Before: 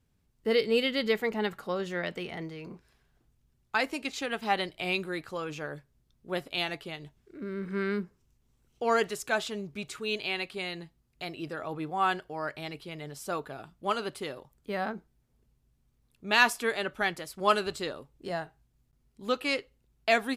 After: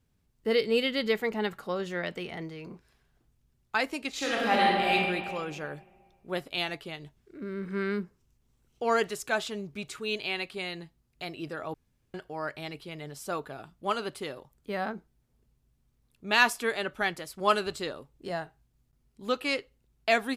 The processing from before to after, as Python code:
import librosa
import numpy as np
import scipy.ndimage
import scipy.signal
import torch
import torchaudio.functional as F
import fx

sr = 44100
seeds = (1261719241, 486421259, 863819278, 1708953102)

y = fx.reverb_throw(x, sr, start_s=4.1, length_s=0.83, rt60_s=1.9, drr_db=-5.0)
y = fx.edit(y, sr, fx.room_tone_fill(start_s=11.74, length_s=0.4), tone=tone)